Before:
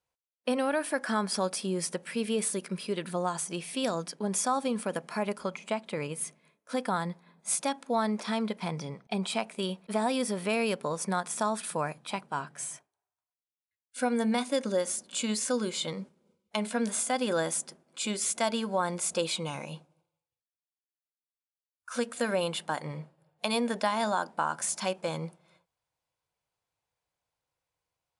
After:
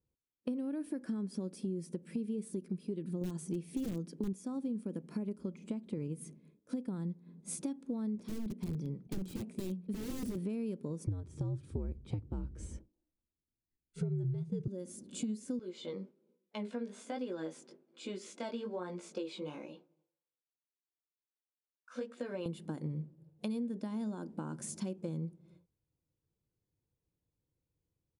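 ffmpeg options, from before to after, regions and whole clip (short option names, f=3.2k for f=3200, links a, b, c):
-filter_complex "[0:a]asettb=1/sr,asplit=3[a][b][c];[a]atrim=end=3.214[d];[b]atrim=start=3.21:end=4.33,asetpts=PTS-STARTPTS,afade=t=in:d=0.004:c=qsin,afade=t=out:st=1.116:d=0.004:c=qsin,acontrast=29,aeval=exprs='(mod(7.5*val(0)+1,2)-1)/7.5':c=same[e];[c]atrim=start=4.326[f];[d][e]acrossfade=d=0.004:c1=hsin:c2=qsin[g];[g][f]acrossfade=d=0.004:c1=qsin:c2=hsin,asettb=1/sr,asplit=3[h][i][j];[h]atrim=end=8.154[k];[i]atrim=start=8.15:end=10.38,asetpts=PTS-STARTPTS,afade=t=in:d=0.004:c=qsin,afade=t=out:st=2.226:d=0.004:c=qsin,bandreject=f=60:t=h:w=6,bandreject=f=120:t=h:w=6,bandreject=f=180:t=h:w=6,bandreject=f=240:t=h:w=6,bandreject=f=300:t=h:w=6,aeval=exprs='(mod(22.4*val(0)+1,2)-1)/22.4':c=same[l];[j]atrim=start=10.376[m];[k][l]acrossfade=d=0.004:c1=hsin:c2=qsin[n];[n][m]acrossfade=d=0.004:c1=qsin:c2=hsin,asettb=1/sr,asplit=3[o][p][q];[o]atrim=end=11.064[r];[p]atrim=start=11.06:end=14.68,asetpts=PTS-STARTPTS,afade=t=in:d=0.004:c=qsin,afade=t=out:st=3.616:d=0.004:c=qsin,lowpass=6.5k,lowshelf=f=380:g=10.5,afreqshift=-87[s];[q]atrim=start=14.676[t];[r][s]acrossfade=d=0.004:c1=hsin:c2=qsin[u];[u][t]acrossfade=d=0.004:c1=qsin:c2=hsin,asettb=1/sr,asplit=3[v][w][x];[v]atrim=end=15.594[y];[w]atrim=start=15.59:end=22.46,asetpts=PTS-STARTPTS,afade=t=in:d=0.004:c=qsin,afade=t=out:st=6.866:d=0.004:c=qsin,acontrast=32,flanger=delay=16:depth=5.3:speed=1.2,highpass=590,lowpass=3.8k[z];[x]atrim=start=22.456[aa];[y][z]acrossfade=d=0.004:c1=hsin:c2=qsin[ab];[ab][aa]acrossfade=d=0.004:c1=qsin:c2=hsin,firequalizer=gain_entry='entry(330,0);entry(670,-23);entry(1300,-25);entry(6300,-21)':delay=0.05:min_phase=1,acompressor=threshold=-45dB:ratio=6,volume=9.5dB"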